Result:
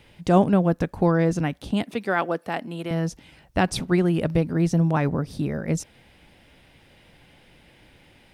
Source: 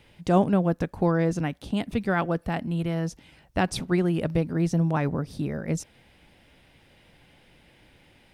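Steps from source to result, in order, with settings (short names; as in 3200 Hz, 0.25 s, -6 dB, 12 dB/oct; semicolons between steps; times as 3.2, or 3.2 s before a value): 1.83–2.91 HPF 310 Hz 12 dB/oct; gain +3 dB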